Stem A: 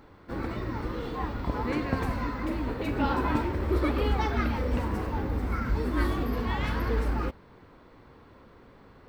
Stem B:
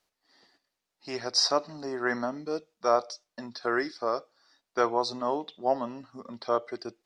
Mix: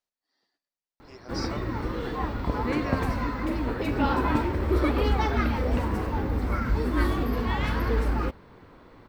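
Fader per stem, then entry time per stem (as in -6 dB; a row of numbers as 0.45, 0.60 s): +2.5, -14.5 dB; 1.00, 0.00 s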